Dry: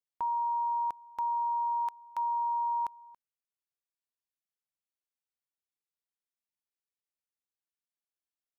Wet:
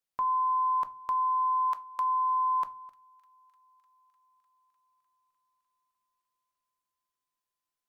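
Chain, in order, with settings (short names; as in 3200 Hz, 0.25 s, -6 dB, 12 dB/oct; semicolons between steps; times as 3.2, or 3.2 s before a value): on a send: thin delay 0.328 s, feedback 76%, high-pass 1500 Hz, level -24 dB; on the sum: shoebox room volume 130 m³, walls furnished, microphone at 0.43 m; speed mistake 44.1 kHz file played as 48 kHz; gain +4 dB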